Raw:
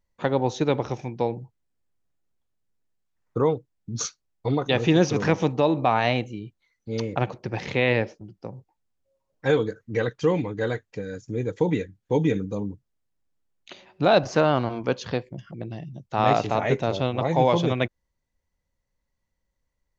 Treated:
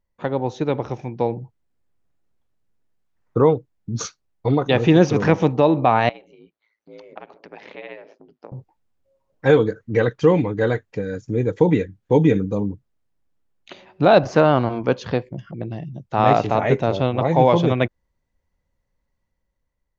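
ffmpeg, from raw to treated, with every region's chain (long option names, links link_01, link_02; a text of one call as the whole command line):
ffmpeg -i in.wav -filter_complex "[0:a]asettb=1/sr,asplit=3[link_01][link_02][link_03];[link_01]atrim=end=6.094[link_04];[link_02]atrim=start=6.09:end=8.52,asetpts=PTS-STARTPTS,afade=type=in:duration=0.004:curve=qsin,afade=type=out:start_time=2.426:duration=0.004:curve=qsin,acompressor=threshold=-42dB:ratio=2.5:attack=3.2:release=140:knee=1:detection=peak,aeval=exprs='val(0)*sin(2*PI*55*n/s)':channel_layout=same,highpass=380,lowpass=4600[link_05];[link_03]atrim=start=8.516[link_06];[link_04][link_05]acrossfade=duration=0.004:curve1=hsin:curve2=qsin[link_07];[link_07][link_06]acrossfade=duration=0.004:curve1=qsin:curve2=hsin,highshelf=frequency=3400:gain=-9.5,dynaudnorm=framelen=490:gausssize=5:maxgain=8.5dB" out.wav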